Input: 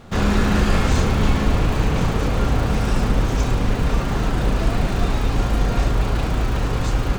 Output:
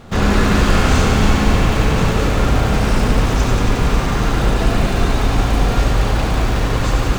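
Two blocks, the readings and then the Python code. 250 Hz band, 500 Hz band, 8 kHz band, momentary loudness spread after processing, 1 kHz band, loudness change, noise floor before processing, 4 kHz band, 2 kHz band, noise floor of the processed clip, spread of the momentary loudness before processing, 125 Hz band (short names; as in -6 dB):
+4.0 dB, +5.0 dB, +6.5 dB, 4 LU, +5.5 dB, +4.5 dB, -23 dBFS, +6.5 dB, +6.0 dB, -19 dBFS, 4 LU, +3.5 dB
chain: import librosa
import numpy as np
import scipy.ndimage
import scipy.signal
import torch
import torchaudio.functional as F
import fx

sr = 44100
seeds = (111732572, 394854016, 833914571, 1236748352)

y = fx.echo_thinned(x, sr, ms=91, feedback_pct=83, hz=330.0, wet_db=-5)
y = y * librosa.db_to_amplitude(3.5)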